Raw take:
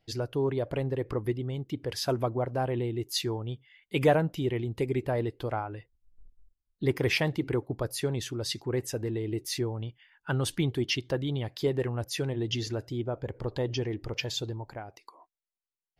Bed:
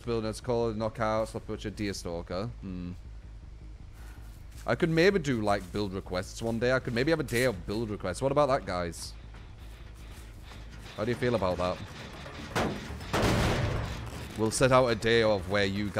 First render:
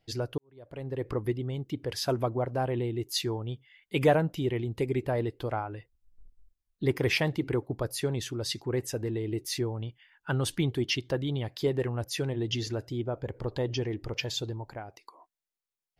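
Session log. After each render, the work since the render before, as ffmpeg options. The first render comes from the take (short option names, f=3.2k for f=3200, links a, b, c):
-filter_complex "[0:a]asplit=2[a][b];[a]atrim=end=0.38,asetpts=PTS-STARTPTS,afade=t=out:st=0.376:d=0.004:c=hsin[c];[b]atrim=start=0.38,asetpts=PTS-STARTPTS,afade=t=in:d=0.68:c=qua[d];[c][d]concat=n=2:v=0:a=1"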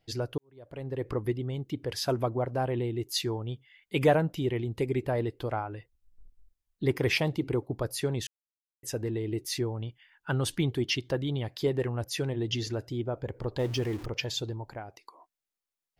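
-filter_complex "[0:a]asettb=1/sr,asplit=3[a][b][c];[a]atrim=end=7.184[d];[b]atrim=start=7.18:end=7.73,asetpts=PTS-STARTPTS,afade=t=in:d=0.004:c=qsin,afade=t=out:st=0.546:d=0.004:c=qsin,equalizer=f=1.7k:w=2.6:g=-8[e];[c]atrim=start=7.726[f];[d][e]acrossfade=d=0.004:c1=hsin:c2=qsin[g];[g][f]acrossfade=d=0.004:c1=qsin:c2=hsin,asettb=1/sr,asplit=3[h][i][j];[h]atrim=end=13.594[k];[i]atrim=start=13.59:end=14.06,asetpts=PTS-STARTPTS,afade=t=in:d=0.004:c=qsin,afade=t=out:st=0.466:d=0.004:c=qsin,aeval=exprs='val(0)+0.5*0.0106*sgn(val(0))':c=same[l];[j]atrim=start=14.056[m];[k][l]acrossfade=d=0.004:c1=hsin:c2=qsin[n];[n][m]acrossfade=d=0.004:c1=qsin:c2=hsin,asplit=3[o][p][q];[o]atrim=end=8.27,asetpts=PTS-STARTPTS,afade=t=out:st=8.266:d=0.004:c=hsin[r];[p]atrim=start=8.27:end=8.83,asetpts=PTS-STARTPTS,volume=0[s];[q]atrim=start=8.83,asetpts=PTS-STARTPTS,afade=t=in:d=0.004:c=hsin[t];[r][s][t]concat=n=3:v=0:a=1"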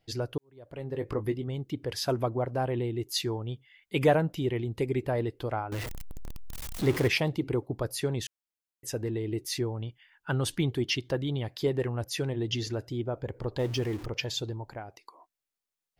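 -filter_complex "[0:a]asettb=1/sr,asplit=3[a][b][c];[a]atrim=end=0.744[d];[b]atrim=start=0.74:end=1.48,asetpts=PTS-STARTPTS,afade=t=in:d=0.004:c=qsin,afade=t=out:st=0.736:d=0.004:c=qsin,asplit=2[e][f];[f]adelay=20,volume=-10dB[g];[e][g]amix=inputs=2:normalize=0,atrim=end_sample=32634[h];[c]atrim=start=1.476[i];[d][h]acrossfade=d=0.004:c1=hsin:c2=qsin[j];[j][i]acrossfade=d=0.004:c1=qsin:c2=hsin,asettb=1/sr,asplit=3[k][l][m];[k]atrim=end=5.724[n];[l]atrim=start=5.72:end=7.08,asetpts=PTS-STARTPTS,afade=t=in:d=0.004:c=qsin,afade=t=out:st=1.356:d=0.004:c=qsin,aeval=exprs='val(0)+0.5*0.0316*sgn(val(0))':c=same[o];[m]atrim=start=7.076[p];[n][o]acrossfade=d=0.004:c1=hsin:c2=qsin[q];[q][p]acrossfade=d=0.004:c1=qsin:c2=hsin"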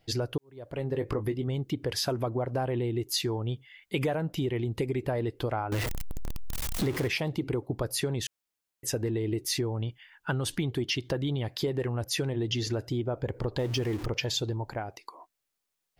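-filter_complex "[0:a]asplit=2[a][b];[b]alimiter=limit=-23dB:level=0:latency=1:release=27,volume=0dB[c];[a][c]amix=inputs=2:normalize=0,acompressor=threshold=-26dB:ratio=6"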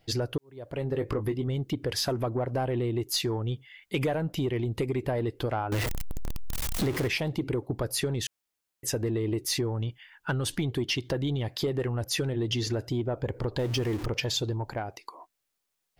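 -af "aeval=exprs='0.15*(cos(1*acos(clip(val(0)/0.15,-1,1)))-cos(1*PI/2))+0.00841*(cos(2*acos(clip(val(0)/0.15,-1,1)))-cos(2*PI/2))+0.0075*(cos(5*acos(clip(val(0)/0.15,-1,1)))-cos(5*PI/2))':c=same"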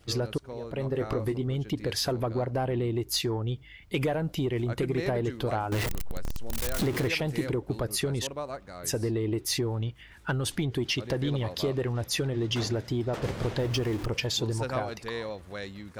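-filter_complex "[1:a]volume=-11dB[a];[0:a][a]amix=inputs=2:normalize=0"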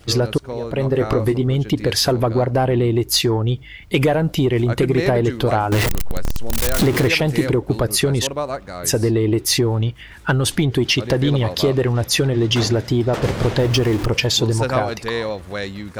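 -af "volume=11.5dB"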